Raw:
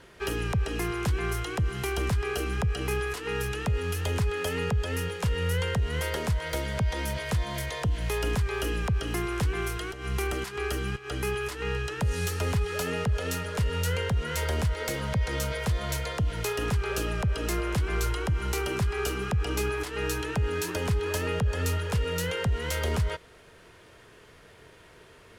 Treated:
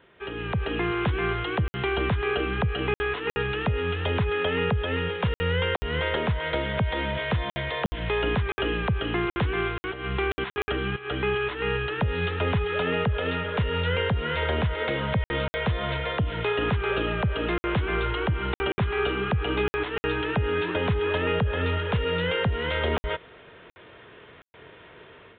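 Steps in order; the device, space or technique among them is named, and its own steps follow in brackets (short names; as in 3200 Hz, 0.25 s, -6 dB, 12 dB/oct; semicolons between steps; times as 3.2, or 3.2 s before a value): call with lost packets (HPF 130 Hz 6 dB/oct; downsampling 8000 Hz; AGC gain up to 10 dB; packet loss packets of 60 ms random); gain -4.5 dB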